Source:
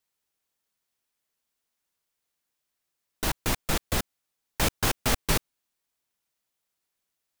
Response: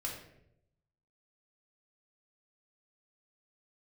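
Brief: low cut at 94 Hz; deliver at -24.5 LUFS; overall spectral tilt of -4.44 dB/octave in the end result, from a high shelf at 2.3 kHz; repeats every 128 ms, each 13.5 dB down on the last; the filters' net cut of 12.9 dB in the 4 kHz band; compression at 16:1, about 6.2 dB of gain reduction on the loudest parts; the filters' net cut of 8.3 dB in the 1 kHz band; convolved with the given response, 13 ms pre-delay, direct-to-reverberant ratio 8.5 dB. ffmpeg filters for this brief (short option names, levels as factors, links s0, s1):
-filter_complex "[0:a]highpass=94,equalizer=f=1000:t=o:g=-9,highshelf=f=2300:g=-8,equalizer=f=4000:t=o:g=-9,acompressor=threshold=0.0282:ratio=16,aecho=1:1:128|256:0.211|0.0444,asplit=2[s0][s1];[1:a]atrim=start_sample=2205,adelay=13[s2];[s1][s2]afir=irnorm=-1:irlink=0,volume=0.335[s3];[s0][s3]amix=inputs=2:normalize=0,volume=5.01"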